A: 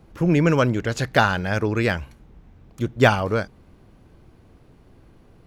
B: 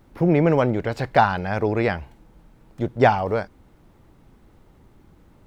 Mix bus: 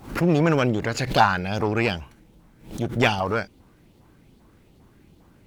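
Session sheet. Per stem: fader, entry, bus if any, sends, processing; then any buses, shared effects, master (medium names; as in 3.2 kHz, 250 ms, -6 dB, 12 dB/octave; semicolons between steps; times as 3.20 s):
-4.5 dB, 0.00 s, no send, LFO high-pass saw up 2.5 Hz 750–4200 Hz
+2.5 dB, 0.00 s, no send, peaking EQ 1.3 kHz -11 dB 2.2 oct; one-sided clip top -25.5 dBFS, bottom -11.5 dBFS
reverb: none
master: bass shelf 70 Hz -10 dB; swell ahead of each attack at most 130 dB/s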